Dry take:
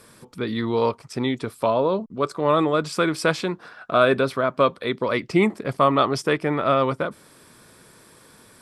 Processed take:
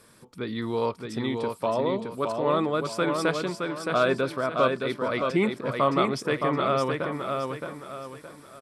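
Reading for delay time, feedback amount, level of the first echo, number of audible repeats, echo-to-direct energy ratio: 618 ms, 36%, -4.5 dB, 4, -4.0 dB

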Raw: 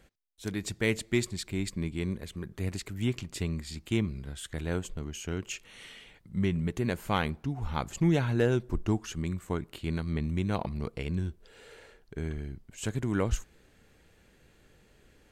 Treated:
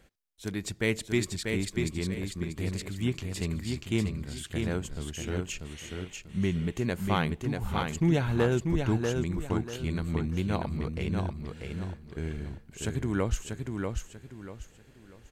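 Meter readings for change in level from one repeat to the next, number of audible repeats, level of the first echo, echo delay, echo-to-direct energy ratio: -10.5 dB, 3, -4.5 dB, 640 ms, -4.0 dB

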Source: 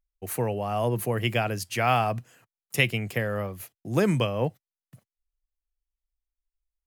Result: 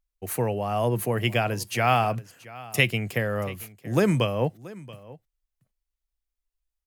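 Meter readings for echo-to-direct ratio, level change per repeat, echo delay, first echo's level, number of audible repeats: -19.5 dB, no regular repeats, 680 ms, -19.5 dB, 1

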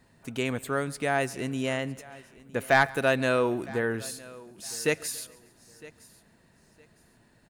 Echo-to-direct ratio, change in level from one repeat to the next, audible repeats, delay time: -18.0 dB, no regular repeats, 5, 139 ms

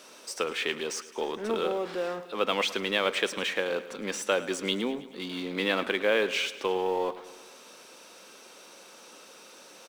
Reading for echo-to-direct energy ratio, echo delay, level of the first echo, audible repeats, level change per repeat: -14.0 dB, 107 ms, -16.0 dB, 5, -4.5 dB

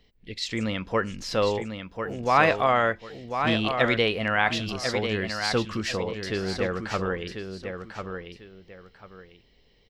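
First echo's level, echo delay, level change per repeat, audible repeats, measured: -7.0 dB, 1045 ms, -11.5 dB, 2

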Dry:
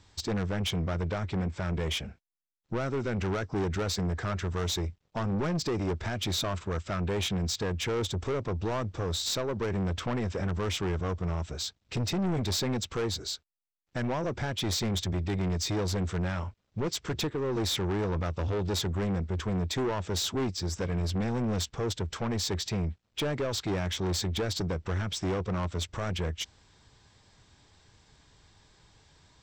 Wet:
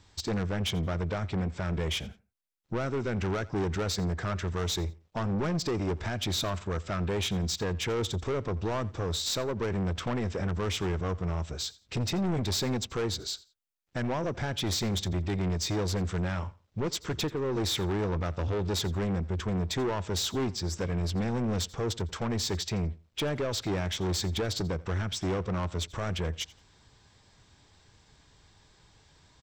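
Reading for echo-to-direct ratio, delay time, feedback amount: -21.0 dB, 86 ms, 23%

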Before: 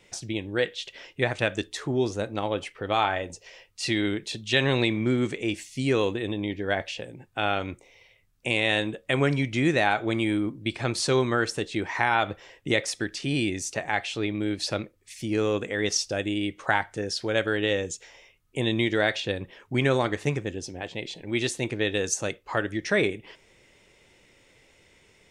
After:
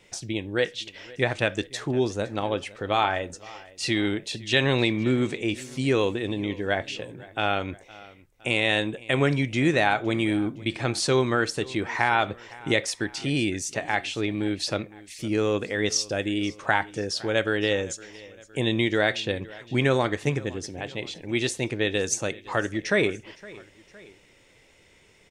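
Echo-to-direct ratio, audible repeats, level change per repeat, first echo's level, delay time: -20.0 dB, 2, -5.5 dB, -21.0 dB, 513 ms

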